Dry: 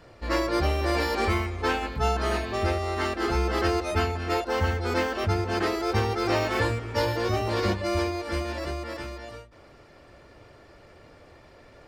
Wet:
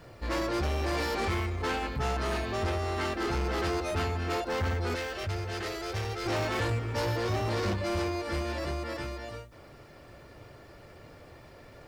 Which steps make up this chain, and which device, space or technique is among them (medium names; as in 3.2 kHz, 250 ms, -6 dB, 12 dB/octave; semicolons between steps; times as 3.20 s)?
open-reel tape (saturation -27 dBFS, distortion -9 dB; peaking EQ 130 Hz +4.5 dB 0.99 oct; white noise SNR 42 dB); 4.95–6.26 s: graphic EQ 125/250/1000 Hz -3/-12/-7 dB